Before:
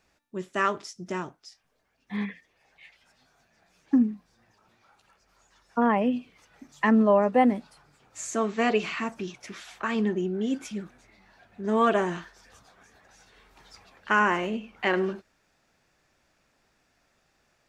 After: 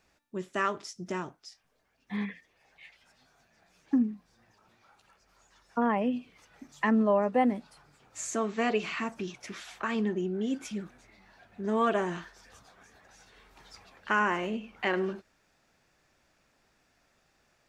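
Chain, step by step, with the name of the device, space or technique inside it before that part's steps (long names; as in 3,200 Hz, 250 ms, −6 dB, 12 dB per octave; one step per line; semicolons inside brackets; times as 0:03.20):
parallel compression (in parallel at −1 dB: downward compressor, threshold −32 dBFS, peak gain reduction 15.5 dB)
on the sum: level −6 dB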